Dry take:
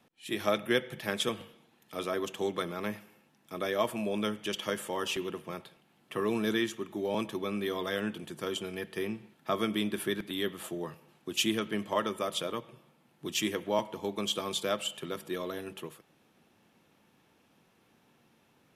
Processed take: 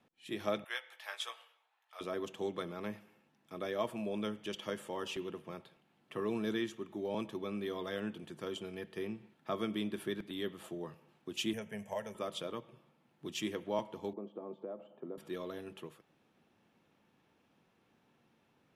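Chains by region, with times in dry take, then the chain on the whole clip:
0:00.64–0:02.01: high-pass filter 800 Hz 24 dB per octave + double-tracking delay 17 ms −7 dB + one half of a high-frequency compander decoder only
0:11.53–0:12.15: high shelf with overshoot 4,700 Hz +6.5 dB, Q 3 + phaser with its sweep stopped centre 1,200 Hz, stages 6 + multiband upward and downward compressor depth 40%
0:14.13–0:15.18: downward compressor 5 to 1, threshold −33 dBFS + flat-topped band-pass 450 Hz, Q 0.69 + low-shelf EQ 410 Hz +4.5 dB
whole clip: low-pass filter 4,000 Hz 6 dB per octave; dynamic equaliser 1,700 Hz, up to −3 dB, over −48 dBFS, Q 0.77; level −5 dB

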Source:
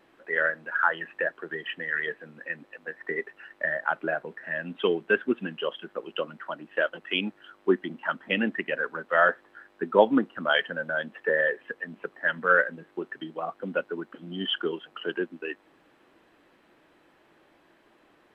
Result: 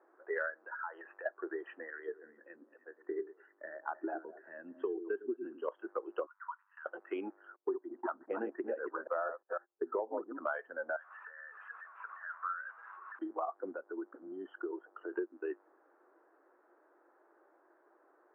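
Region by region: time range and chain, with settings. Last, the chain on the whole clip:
0:00.55–0:01.26: downward compressor 10 to 1, threshold −36 dBFS + low-shelf EQ 480 Hz −6 dB + leveller curve on the samples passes 1
0:01.90–0:05.68: flat-topped bell 1,100 Hz −9.5 dB 2.7 octaves + echo through a band-pass that steps 104 ms, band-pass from 300 Hz, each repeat 1.4 octaves, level −9 dB
0:06.26–0:06.86: downward compressor 5 to 1, threshold −35 dBFS + Chebyshev high-pass with heavy ripple 930 Hz, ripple 3 dB
0:07.56–0:10.38: delay that plays each chunk backwards 168 ms, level −6 dB + low-pass filter 1,000 Hz 6 dB per octave + noise gate −51 dBFS, range −28 dB
0:10.96–0:13.19: converter with a step at zero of −29.5 dBFS + downward compressor 12 to 1, threshold −26 dBFS + four-pole ladder high-pass 1,100 Hz, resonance 55%
0:13.71–0:15.13: low-pass filter 1,300 Hz 6 dB per octave + downward compressor 2.5 to 1, threshold −37 dBFS
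whole clip: elliptic band-pass filter 350–1,500 Hz, stop band 50 dB; noise reduction from a noise print of the clip's start 8 dB; downward compressor 10 to 1, threshold −37 dBFS; level +4 dB

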